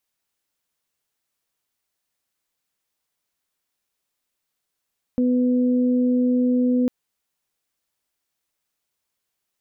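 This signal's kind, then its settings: steady additive tone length 1.70 s, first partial 249 Hz, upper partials -9.5 dB, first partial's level -16.5 dB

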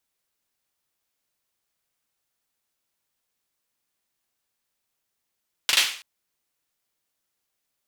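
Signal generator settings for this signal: hand clap length 0.33 s, bursts 3, apart 40 ms, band 2.9 kHz, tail 0.46 s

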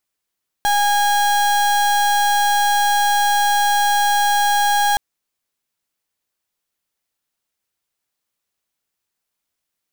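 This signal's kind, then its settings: pulse 820 Hz, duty 35% -16 dBFS 4.32 s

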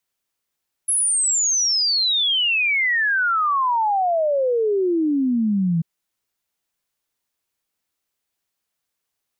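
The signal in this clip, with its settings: log sweep 11 kHz -> 160 Hz 4.94 s -16.5 dBFS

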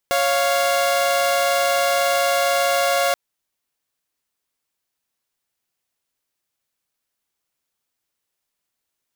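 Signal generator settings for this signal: chord C#5/F5 saw, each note -17 dBFS 3.03 s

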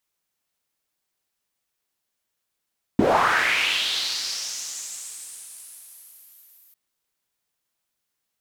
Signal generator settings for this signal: swept filtered noise pink, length 3.75 s bandpass, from 230 Hz, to 14 kHz, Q 3.4, linear, gain ramp -36 dB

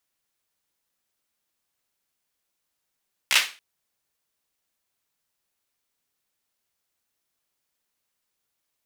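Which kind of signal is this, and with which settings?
hand clap length 0.28 s, bursts 4, apart 15 ms, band 2.5 kHz, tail 0.32 s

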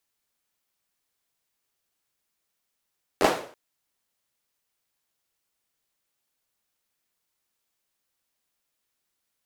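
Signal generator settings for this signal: hand clap length 0.33 s, apart 11 ms, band 500 Hz, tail 0.47 s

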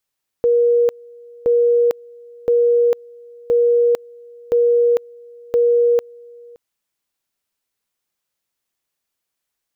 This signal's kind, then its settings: two-level tone 476 Hz -11 dBFS, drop 26.5 dB, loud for 0.45 s, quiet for 0.57 s, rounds 6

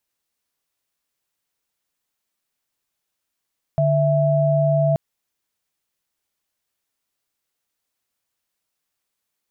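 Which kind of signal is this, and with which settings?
chord D3/E5 sine, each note -17.5 dBFS 1.18 s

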